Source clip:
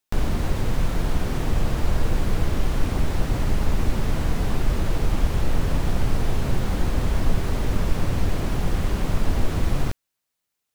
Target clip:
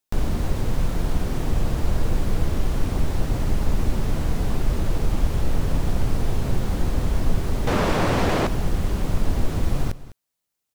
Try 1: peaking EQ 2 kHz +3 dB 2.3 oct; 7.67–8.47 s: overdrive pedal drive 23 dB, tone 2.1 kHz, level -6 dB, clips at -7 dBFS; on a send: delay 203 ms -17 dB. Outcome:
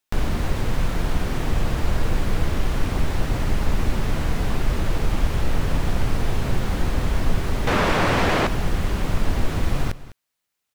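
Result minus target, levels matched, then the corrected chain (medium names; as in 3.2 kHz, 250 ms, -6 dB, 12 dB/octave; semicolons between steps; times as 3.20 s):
2 kHz band +5.0 dB
peaking EQ 2 kHz -3.5 dB 2.3 oct; 7.67–8.47 s: overdrive pedal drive 23 dB, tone 2.1 kHz, level -6 dB, clips at -7 dBFS; on a send: delay 203 ms -17 dB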